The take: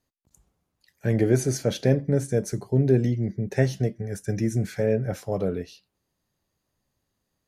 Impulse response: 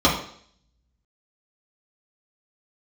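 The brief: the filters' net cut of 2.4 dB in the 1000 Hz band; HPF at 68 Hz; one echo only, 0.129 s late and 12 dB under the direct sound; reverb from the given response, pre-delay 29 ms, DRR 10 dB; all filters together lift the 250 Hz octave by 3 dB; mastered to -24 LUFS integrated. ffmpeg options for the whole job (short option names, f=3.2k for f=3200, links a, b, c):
-filter_complex "[0:a]highpass=68,equalizer=f=250:t=o:g=4,equalizer=f=1k:t=o:g=-4.5,aecho=1:1:129:0.251,asplit=2[a][b];[1:a]atrim=start_sample=2205,adelay=29[c];[b][c]afir=irnorm=-1:irlink=0,volume=-30dB[d];[a][d]amix=inputs=2:normalize=0,volume=-1dB"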